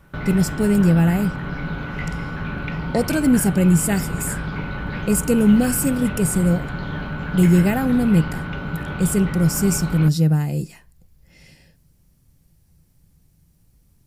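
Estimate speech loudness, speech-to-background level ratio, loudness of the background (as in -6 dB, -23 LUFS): -19.0 LUFS, 9.5 dB, -28.5 LUFS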